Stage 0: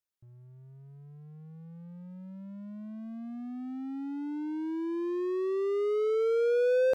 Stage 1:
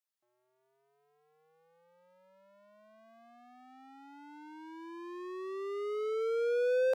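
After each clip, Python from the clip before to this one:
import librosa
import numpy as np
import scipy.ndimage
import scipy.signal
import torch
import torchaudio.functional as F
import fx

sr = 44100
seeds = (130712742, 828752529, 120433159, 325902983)

y = scipy.signal.sosfilt(scipy.signal.butter(4, 480.0, 'highpass', fs=sr, output='sos'), x)
y = y * librosa.db_to_amplitude(-1.5)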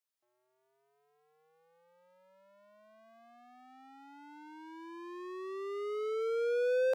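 y = fx.low_shelf(x, sr, hz=160.0, db=-9.0)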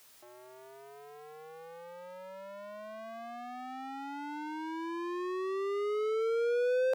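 y = fx.env_flatten(x, sr, amount_pct=50)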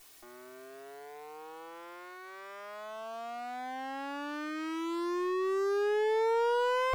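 y = fx.lower_of_two(x, sr, delay_ms=2.7)
y = y * librosa.db_to_amplitude(4.0)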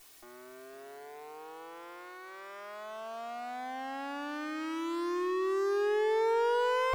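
y = x + 10.0 ** (-13.5 / 20.0) * np.pad(x, (int(500 * sr / 1000.0), 0))[:len(x)]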